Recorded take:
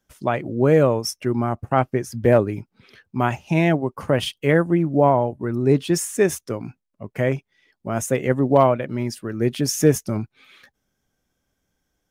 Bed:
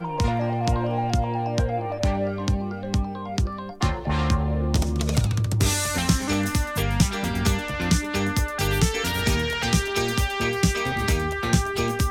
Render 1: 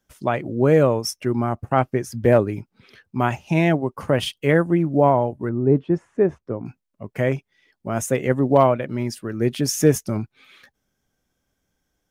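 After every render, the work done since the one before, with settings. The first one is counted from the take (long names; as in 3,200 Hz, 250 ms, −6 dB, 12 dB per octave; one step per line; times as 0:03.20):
0:05.49–0:06.66: low-pass filter 1,000 Hz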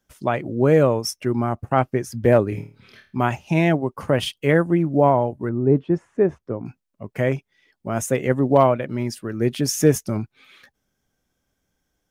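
0:02.49–0:03.19: flutter between parallel walls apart 4.6 metres, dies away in 0.35 s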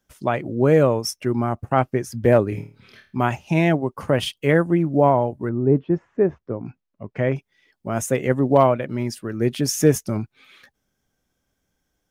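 0:05.65–0:07.36: high-frequency loss of the air 170 metres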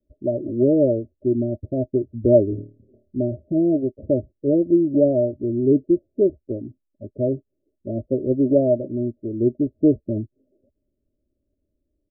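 Chebyshev low-pass filter 620 Hz, order 8
comb filter 3.1 ms, depth 69%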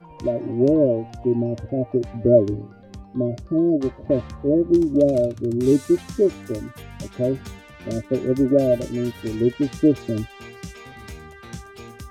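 mix in bed −15.5 dB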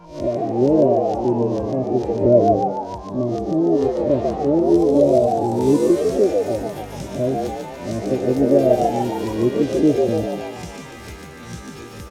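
peak hold with a rise ahead of every peak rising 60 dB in 0.42 s
echo with shifted repeats 145 ms, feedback 52%, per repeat +88 Hz, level −3.5 dB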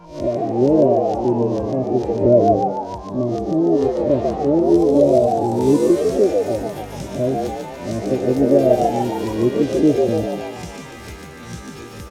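level +1 dB
brickwall limiter −2 dBFS, peak gain reduction 1 dB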